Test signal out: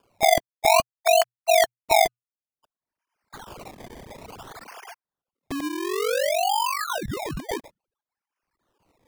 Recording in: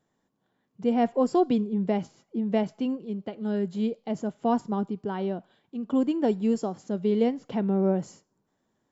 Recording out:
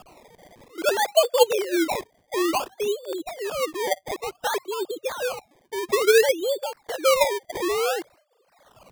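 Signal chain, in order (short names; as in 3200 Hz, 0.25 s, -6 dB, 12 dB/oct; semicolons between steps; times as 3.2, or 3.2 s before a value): sine-wave speech; upward compressor, threshold -29 dBFS; frequency shift +120 Hz; decimation with a swept rate 22×, swing 100% 0.57 Hz; gain +2.5 dB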